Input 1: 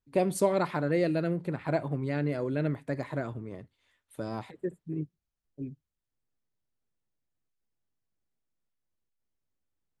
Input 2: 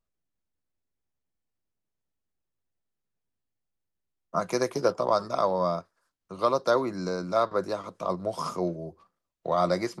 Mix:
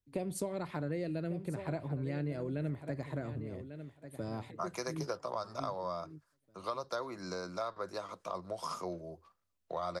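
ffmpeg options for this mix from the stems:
ffmpeg -i stem1.wav -i stem2.wav -filter_complex "[0:a]equalizer=frequency=1200:width_type=o:width=1.8:gain=-4,volume=-2.5dB,asplit=2[link_01][link_02];[link_02]volume=-14.5dB[link_03];[1:a]lowshelf=frequency=460:gain=-10.5,adelay=250,volume=-2.5dB[link_04];[link_03]aecho=0:1:1145|2290|3435:1|0.15|0.0225[link_05];[link_01][link_04][link_05]amix=inputs=3:normalize=0,equalizer=frequency=85:width_type=o:width=0.29:gain=10.5,acrossover=split=120[link_06][link_07];[link_07]acompressor=threshold=-35dB:ratio=4[link_08];[link_06][link_08]amix=inputs=2:normalize=0" out.wav

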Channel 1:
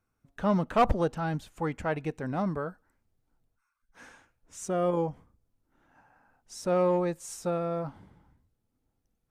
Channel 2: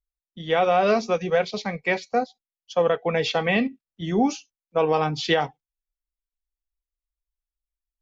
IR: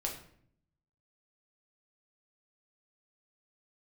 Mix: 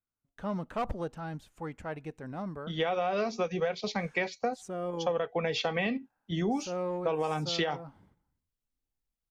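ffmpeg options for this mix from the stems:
-filter_complex "[0:a]agate=range=-10dB:threshold=-55dB:ratio=16:detection=peak,acontrast=86,volume=-15dB[link_01];[1:a]adelay=2300,volume=-1dB[link_02];[link_01][link_02]amix=inputs=2:normalize=0,acompressor=threshold=-27dB:ratio=6"

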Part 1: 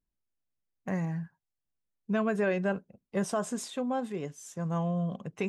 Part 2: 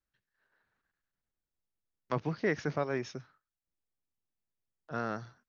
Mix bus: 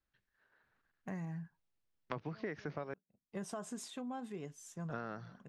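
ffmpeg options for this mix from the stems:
ffmpeg -i stem1.wav -i stem2.wav -filter_complex "[0:a]equalizer=frequency=530:width=7.2:gain=-7.5,adelay=200,volume=-7dB[link_01];[1:a]lowpass=4400,volume=2.5dB,asplit=3[link_02][link_03][link_04];[link_02]atrim=end=2.94,asetpts=PTS-STARTPTS,afade=type=out:start_time=2.936:duration=0.004:curve=hsin[link_05];[link_03]atrim=start=2.94:end=4.5,asetpts=PTS-STARTPTS,volume=0[link_06];[link_04]atrim=start=4.5,asetpts=PTS-STARTPTS,afade=type=in:duration=0.004:curve=hsin[link_07];[link_05][link_06][link_07]concat=n=3:v=0:a=1,asplit=2[link_08][link_09];[link_09]apad=whole_len=250920[link_10];[link_01][link_10]sidechaincompress=threshold=-44dB:ratio=16:attack=7.8:release=348[link_11];[link_11][link_08]amix=inputs=2:normalize=0,acompressor=threshold=-39dB:ratio=5" out.wav

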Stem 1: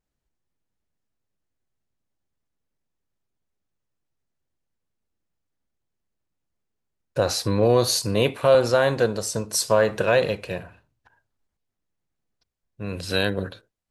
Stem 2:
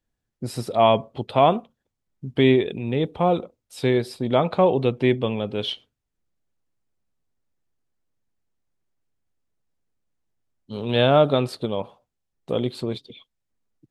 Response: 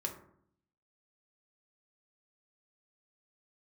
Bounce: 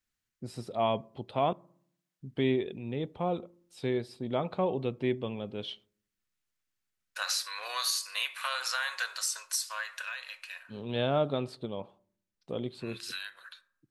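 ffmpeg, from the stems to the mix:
-filter_complex "[0:a]highpass=frequency=1300:width=0.5412,highpass=frequency=1300:width=1.3066,acompressor=threshold=-31dB:ratio=6,volume=-1dB,afade=type=out:start_time=9.38:duration=0.72:silence=0.421697,asplit=2[link_01][link_02];[link_02]volume=-4.5dB[link_03];[1:a]lowpass=10000,equalizer=frequency=210:width=1.5:gain=2,volume=-12.5dB,asplit=3[link_04][link_05][link_06];[link_04]atrim=end=1.53,asetpts=PTS-STARTPTS,afade=type=out:start_time=1.526:duration=0.004:curve=hsin[link_07];[link_05]atrim=start=1.53:end=2.2,asetpts=PTS-STARTPTS,volume=0[link_08];[link_06]atrim=start=2.2,asetpts=PTS-STARTPTS,afade=type=in:duration=0.004:curve=hsin[link_09];[link_07][link_08][link_09]concat=n=3:v=0:a=1,asplit=2[link_10][link_11];[link_11]volume=-19.5dB[link_12];[2:a]atrim=start_sample=2205[link_13];[link_03][link_12]amix=inputs=2:normalize=0[link_14];[link_14][link_13]afir=irnorm=-1:irlink=0[link_15];[link_01][link_10][link_15]amix=inputs=3:normalize=0"

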